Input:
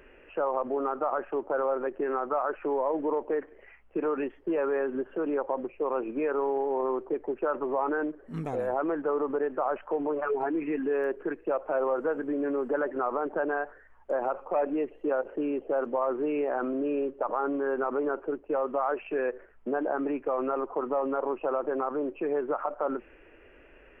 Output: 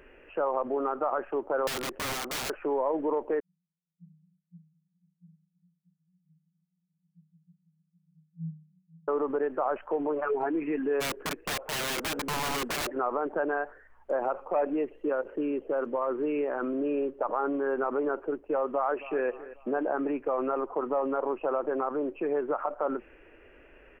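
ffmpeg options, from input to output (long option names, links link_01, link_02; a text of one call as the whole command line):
ffmpeg -i in.wav -filter_complex "[0:a]asettb=1/sr,asplit=3[link_01][link_02][link_03];[link_01]atrim=end=1.674[link_04];[link_02]atrim=start=1.67:end=2.5,asetpts=PTS-STARTPTS,afade=type=in:duration=0.004:curve=qsin,afade=type=out:start_time=0.826:duration=0.004:curve=qsin,aeval=exprs='(mod(25.1*val(0)+1,2)-1)/25.1':channel_layout=same[link_05];[link_03]atrim=start=2.496[link_06];[link_04][link_05]acrossfade=duration=0.004:curve1=hsin:curve2=qsin[link_07];[link_07][link_06]acrossfade=duration=0.004:curve1=qsin:curve2=hsin,asettb=1/sr,asplit=3[link_08][link_09][link_10];[link_08]atrim=end=3.404[link_11];[link_09]atrim=start=3.4:end=9.08,asetpts=PTS-STARTPTS,afade=type=in:duration=0.004:curve=qsin,afade=type=out:start_time=5.676:duration=0.004:curve=qsin,asuperpass=centerf=170:order=20:qfactor=5.1[link_12];[link_10]atrim=start=9.076[link_13];[link_11][link_12]acrossfade=duration=0.004:curve1=hsin:curve2=qsin[link_14];[link_14][link_13]acrossfade=duration=0.004:curve1=qsin:curve2=hsin,asplit=3[link_15][link_16][link_17];[link_15]afade=type=out:start_time=11:duration=0.02[link_18];[link_16]aeval=exprs='(mod(21.1*val(0)+1,2)-1)/21.1':channel_layout=same,afade=type=in:start_time=11:duration=0.02,afade=type=out:start_time=12.87:duration=0.02[link_19];[link_17]afade=type=in:start_time=12.87:duration=0.02[link_20];[link_18][link_19][link_20]amix=inputs=3:normalize=0,asettb=1/sr,asplit=3[link_21][link_22][link_23];[link_21]atrim=end=14.924[link_24];[link_22]atrim=start=14.92:end=16.78,asetpts=PTS-STARTPTS,afade=type=in:duration=0.004:curve=qsin,afade=type=out:start_time=1.856:duration=0.004:curve=qsin,equalizer=frequency=740:width_type=o:width=0.44:gain=-6.5[link_25];[link_23]atrim=start=16.776[link_26];[link_24][link_25]acrossfade=duration=0.004:curve1=hsin:curve2=qsin[link_27];[link_27][link_26]acrossfade=duration=0.004:curve1=qsin:curve2=hsin,asplit=2[link_28][link_29];[link_29]afade=type=in:start_time=18.72:duration=0.01,afade=type=out:start_time=19.26:duration=0.01,aecho=0:1:270|540|810|1080:0.158489|0.0713202|0.0320941|0.0144423[link_30];[link_28][link_30]amix=inputs=2:normalize=0" out.wav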